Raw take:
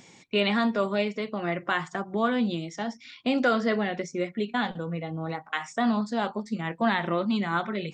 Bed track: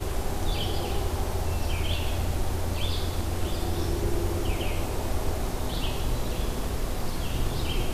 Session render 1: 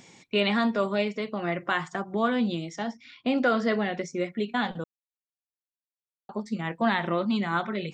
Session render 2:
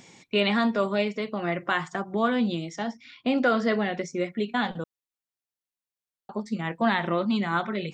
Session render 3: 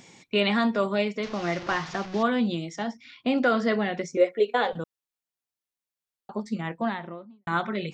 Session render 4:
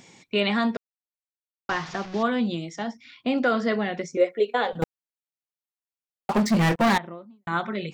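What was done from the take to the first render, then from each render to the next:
0:02.90–0:03.56: high-shelf EQ 4,300 Hz → 6,300 Hz −11.5 dB; 0:04.84–0:06.29: silence
level +1 dB
0:01.23–0:02.23: linear delta modulator 32 kbit/s, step −32.5 dBFS; 0:04.17–0:04.73: high-pass with resonance 480 Hz, resonance Q 5.5; 0:06.44–0:07.47: fade out and dull
0:00.77–0:01.69: silence; 0:04.82–0:06.98: leveller curve on the samples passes 5

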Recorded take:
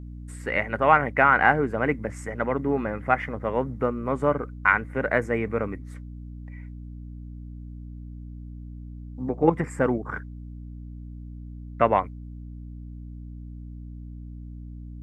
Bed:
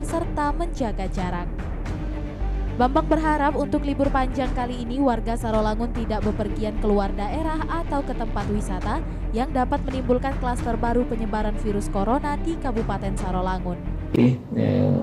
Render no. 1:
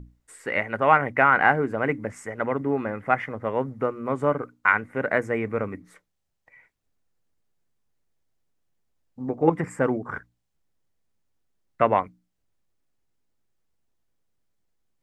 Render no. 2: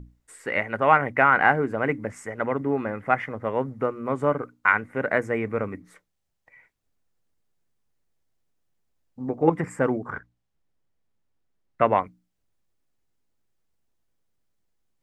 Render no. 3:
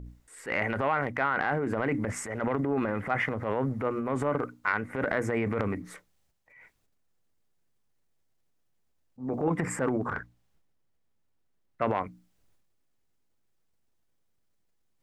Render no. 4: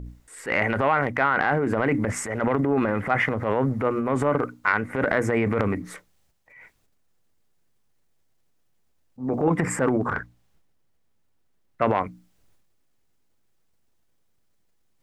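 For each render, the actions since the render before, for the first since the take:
mains-hum notches 60/120/180/240/300 Hz
0:10.10–0:11.82: low-pass filter 3,400 Hz 6 dB per octave
transient designer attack −8 dB, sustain +8 dB; downward compressor 10 to 1, threshold −23 dBFS, peak gain reduction 11 dB
level +6 dB

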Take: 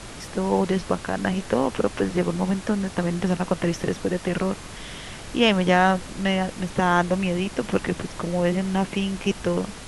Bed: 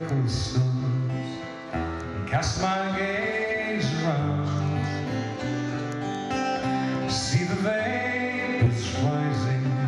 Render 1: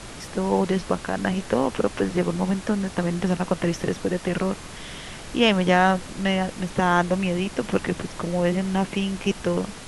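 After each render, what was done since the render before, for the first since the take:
hum removal 50 Hz, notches 2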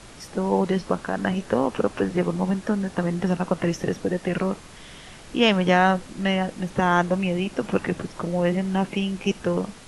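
noise reduction from a noise print 6 dB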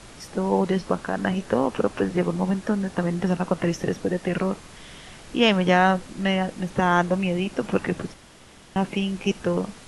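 0:08.14–0:08.76: fill with room tone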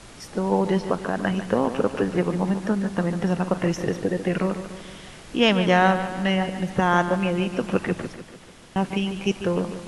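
bucket-brigade delay 146 ms, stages 4,096, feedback 54%, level −11 dB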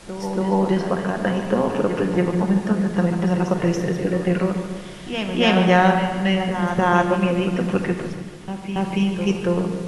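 backwards echo 281 ms −8.5 dB
rectangular room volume 1,100 cubic metres, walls mixed, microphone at 0.92 metres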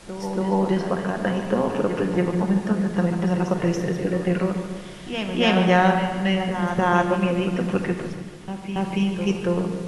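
level −2 dB

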